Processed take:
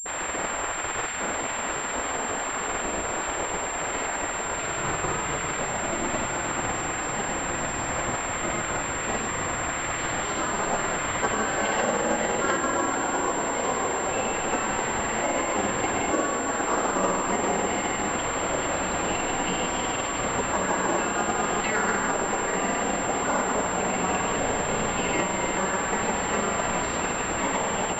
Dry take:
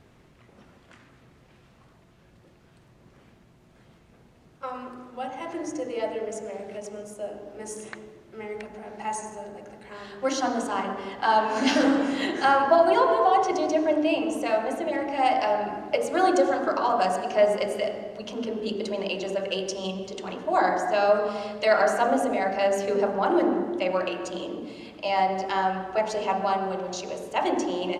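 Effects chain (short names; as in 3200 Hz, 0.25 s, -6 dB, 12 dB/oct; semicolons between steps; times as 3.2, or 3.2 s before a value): delta modulation 64 kbps, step -25.5 dBFS; high shelf 2800 Hz -11.5 dB; Schroeder reverb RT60 2 s, combs from 32 ms, DRR 0 dB; compressor, threshold -22 dBFS, peak gain reduction 10.5 dB; grains, spray 0.1 s, pitch spread up and down by 0 st; spectral gate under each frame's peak -10 dB weak; diffused feedback echo 1.697 s, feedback 79%, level -8.5 dB; pulse-width modulation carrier 7400 Hz; gain +8 dB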